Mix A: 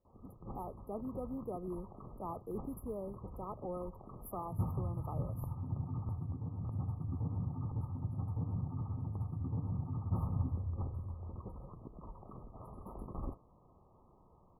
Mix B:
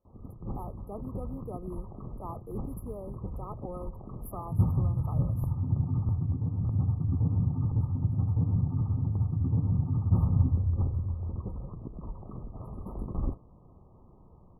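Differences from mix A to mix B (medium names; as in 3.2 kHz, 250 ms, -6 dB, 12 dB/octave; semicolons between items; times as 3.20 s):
speech: add peaking EQ 4.3 kHz +11.5 dB 2.1 oct; background: add bass shelf 460 Hz +11.5 dB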